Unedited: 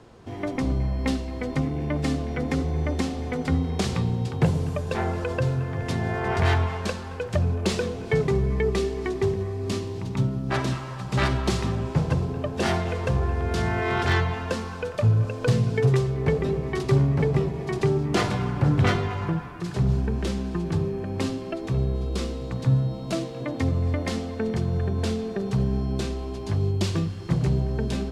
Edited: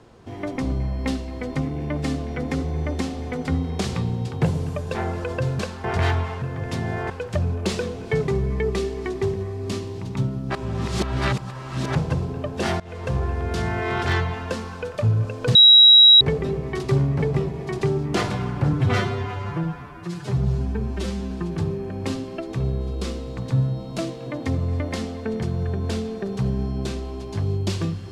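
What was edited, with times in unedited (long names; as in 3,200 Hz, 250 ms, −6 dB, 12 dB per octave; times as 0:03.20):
0:05.59–0:06.27: swap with 0:06.85–0:07.10
0:10.55–0:11.95: reverse
0:12.80–0:13.15: fade in, from −21 dB
0:15.55–0:16.21: beep over 3,860 Hz −7 dBFS
0:18.73–0:20.45: time-stretch 1.5×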